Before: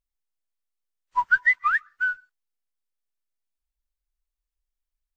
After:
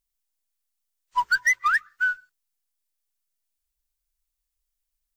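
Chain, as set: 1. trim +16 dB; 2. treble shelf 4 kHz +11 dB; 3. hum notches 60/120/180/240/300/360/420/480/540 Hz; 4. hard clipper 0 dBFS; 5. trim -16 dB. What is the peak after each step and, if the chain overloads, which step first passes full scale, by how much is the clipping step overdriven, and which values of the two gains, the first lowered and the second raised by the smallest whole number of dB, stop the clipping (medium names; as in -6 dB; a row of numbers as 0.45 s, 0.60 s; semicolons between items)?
+6.5 dBFS, +8.0 dBFS, +8.0 dBFS, 0.0 dBFS, -16.0 dBFS; step 1, 8.0 dB; step 1 +8 dB, step 5 -8 dB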